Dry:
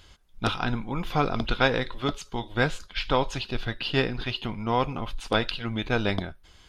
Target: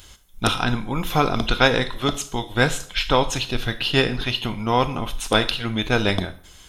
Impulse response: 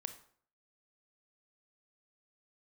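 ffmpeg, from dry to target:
-filter_complex "[0:a]bandreject=f=4700:w=8.5,asplit=2[s0][s1];[s1]highshelf=f=5500:g=9.5[s2];[1:a]atrim=start_sample=2205,highshelf=f=4600:g=11.5[s3];[s2][s3]afir=irnorm=-1:irlink=0,volume=1.58[s4];[s0][s4]amix=inputs=2:normalize=0,volume=0.841"

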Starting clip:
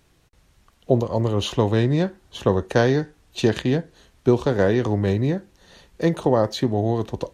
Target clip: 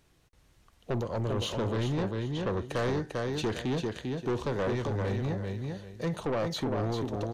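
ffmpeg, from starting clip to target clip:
-filter_complex "[0:a]asettb=1/sr,asplit=3[s0][s1][s2];[s0]atrim=end=1.724[s3];[s1]atrim=start=1.72:end=2.49,asetpts=PTS-STARTPTS,afade=t=in:d=0.004:c=qsin,afade=t=out:st=0.766:d=0.004:c=qsin,lowpass=5600[s4];[s2]atrim=start=2.486[s5];[s3][s4]acrossfade=d=0.004:c1=hsin:c2=qsin[s6];[s6][s5]acrossfade=d=0.004:c1=qsin:c2=hsin,asettb=1/sr,asplit=3[s7][s8][s9];[s7]atrim=end=4.634[s10];[s8]atrim=start=4.63:end=6.27,asetpts=PTS-STARTPTS,afade=t=in:d=0.004:c=qsin,afade=t=out:st=1.636:d=0.004:c=qsin,equalizer=f=320:w=1.8:g=-7[s11];[s9]atrim=start=6.266[s12];[s10][s11]acrossfade=d=0.004:c1=hsin:c2=qsin[s13];[s13][s12]acrossfade=d=0.004:c1=qsin:c2=hsin,aecho=1:1:396|792|1188:0.501|0.115|0.0265,asoftclip=type=tanh:threshold=0.1,volume=0.531"

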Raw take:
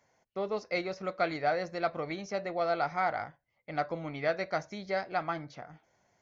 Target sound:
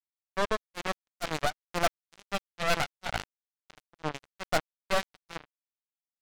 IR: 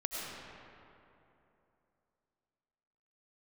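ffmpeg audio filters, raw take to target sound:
-filter_complex "[0:a]aeval=exprs='0.158*(cos(1*acos(clip(val(0)/0.158,-1,1)))-cos(1*PI/2))+0.00891*(cos(2*acos(clip(val(0)/0.158,-1,1)))-cos(2*PI/2))+0.00562*(cos(4*acos(clip(val(0)/0.158,-1,1)))-cos(4*PI/2))+0.00708*(cos(6*acos(clip(val(0)/0.158,-1,1)))-cos(6*PI/2))+0.0398*(cos(8*acos(clip(val(0)/0.158,-1,1)))-cos(8*PI/2))':c=same,tremolo=f=2.2:d=0.92,asettb=1/sr,asplit=3[s0][s1][s2];[s0]atrim=end=2.194[s3];[s1]atrim=start=2.19:end=3.85,asetpts=PTS-STARTPTS,afade=t=in:d=0.004:c=qsin,afade=t=out:st=1.656:d=0.004:c=qsin,equalizer=f=160:t=o:w=0.33:g=5,equalizer=f=400:t=o:w=0.33:g=-6,equalizer=f=630:t=o:w=0.33:g=-9,equalizer=f=2500:t=o:w=0.33:g=6[s4];[s2]atrim=start=3.846[s5];[s3][s4]acrossfade=d=0.004:c1=hsin:c2=qsin[s6];[s6][s5]acrossfade=d=0.004:c1=qsin:c2=hsin,asplit=2[s7][s8];[s8]aeval=exprs='sgn(val(0))*max(abs(val(0))-0.00355,0)':c=same,volume=0.266[s9];[s7][s9]amix=inputs=2:normalize=0,acrusher=bits=3:mix=0:aa=0.5"

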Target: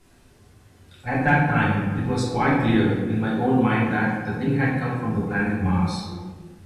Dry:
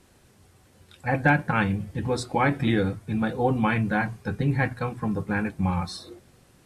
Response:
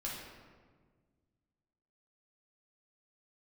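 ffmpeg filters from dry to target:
-filter_complex "[0:a]asettb=1/sr,asplit=3[s0][s1][s2];[s0]atrim=end=2.764[s3];[s1]atrim=start=2.76:end=5.13,asetpts=PTS-STARTPTS,afade=t=in:d=0.004:c=qsin,afade=t=out:st=2.366:d=0.004:c=qsin,highpass=110[s4];[s2]atrim=start=5.126[s5];[s3][s4]acrossfade=d=0.004:c1=hsin:c2=qsin[s6];[s6][s5]acrossfade=d=0.004:c1=qsin:c2=hsin[s7];[1:a]atrim=start_sample=2205,asetrate=52920,aresample=44100[s8];[s7][s8]afir=irnorm=-1:irlink=0,volume=1.41"

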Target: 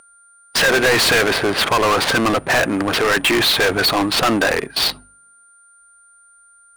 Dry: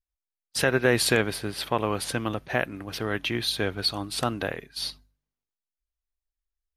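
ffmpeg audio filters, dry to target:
-filter_complex "[0:a]aeval=exprs='val(0)+0.0158*sin(2*PI*9100*n/s)':c=same,adynamicsmooth=sensitivity=6.5:basefreq=750,asplit=2[s0][s1];[s1]highpass=f=720:p=1,volume=70.8,asoftclip=type=tanh:threshold=0.398[s2];[s0][s2]amix=inputs=2:normalize=0,lowpass=f=8000:p=1,volume=0.501"

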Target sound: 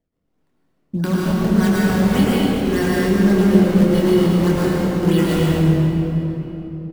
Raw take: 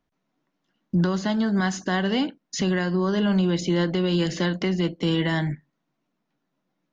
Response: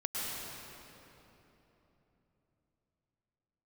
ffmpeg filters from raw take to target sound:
-filter_complex "[0:a]acrossover=split=600[s0][s1];[s1]acrusher=samples=31:mix=1:aa=0.000001:lfo=1:lforange=49.6:lforate=1.7[s2];[s0][s2]amix=inputs=2:normalize=0,asplit=2[s3][s4];[s4]adelay=25,volume=0.531[s5];[s3][s5]amix=inputs=2:normalize=0[s6];[1:a]atrim=start_sample=2205[s7];[s6][s7]afir=irnorm=-1:irlink=0,volume=1.19"

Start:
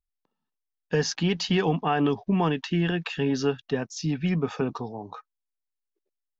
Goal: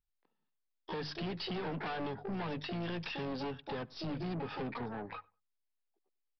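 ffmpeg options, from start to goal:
-filter_complex "[0:a]bandreject=f=50:t=h:w=6,bandreject=f=100:t=h:w=6,bandreject=f=150:t=h:w=6,acompressor=threshold=0.0562:ratio=12,asplit=3[s0][s1][s2];[s1]asetrate=29433,aresample=44100,atempo=1.49831,volume=0.178[s3];[s2]asetrate=88200,aresample=44100,atempo=0.5,volume=0.501[s4];[s0][s3][s4]amix=inputs=3:normalize=0,aeval=exprs='(tanh(39.8*val(0)+0.25)-tanh(0.25))/39.8':c=same,asplit=2[s5][s6];[s6]adelay=96,lowpass=f=1500:p=1,volume=0.0708,asplit=2[s7][s8];[s8]adelay=96,lowpass=f=1500:p=1,volume=0.21[s9];[s7][s9]amix=inputs=2:normalize=0[s10];[s5][s10]amix=inputs=2:normalize=0,aresample=11025,aresample=44100,volume=0.708"

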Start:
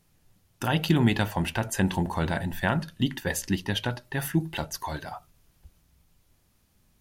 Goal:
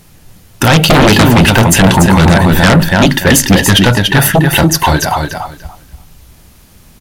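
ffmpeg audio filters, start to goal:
-af "aecho=1:1:288|576|864:0.501|0.0902|0.0162,aeval=exprs='0.376*sin(PI/2*4.47*val(0)/0.376)':c=same,volume=2.11"

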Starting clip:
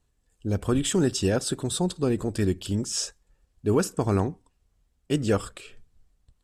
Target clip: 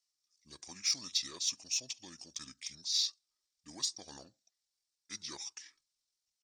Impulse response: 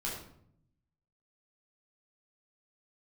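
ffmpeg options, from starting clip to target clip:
-af "asetrate=31183,aresample=44100,atempo=1.41421,bandpass=f=4800:t=q:w=0.71:csg=0,aexciter=amount=2.2:drive=7.8:freq=4000,volume=0.398"

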